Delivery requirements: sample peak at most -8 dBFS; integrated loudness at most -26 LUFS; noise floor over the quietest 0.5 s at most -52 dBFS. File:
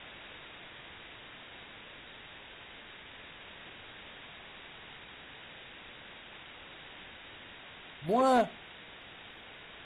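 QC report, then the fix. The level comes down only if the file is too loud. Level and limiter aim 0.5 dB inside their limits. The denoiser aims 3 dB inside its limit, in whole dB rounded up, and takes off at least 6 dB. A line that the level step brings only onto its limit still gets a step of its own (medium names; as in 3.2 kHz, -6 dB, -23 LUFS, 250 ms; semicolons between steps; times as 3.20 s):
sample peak -18.0 dBFS: pass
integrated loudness -39.0 LUFS: pass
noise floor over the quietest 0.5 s -50 dBFS: fail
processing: noise reduction 6 dB, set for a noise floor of -50 dBFS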